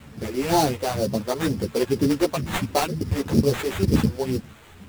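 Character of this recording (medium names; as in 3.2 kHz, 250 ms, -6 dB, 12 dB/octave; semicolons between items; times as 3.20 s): a quantiser's noise floor 8-bit, dither none; phasing stages 2, 2.1 Hz, lowest notch 130–3000 Hz; aliases and images of a low sample rate 5.2 kHz, jitter 20%; a shimmering, thickened sound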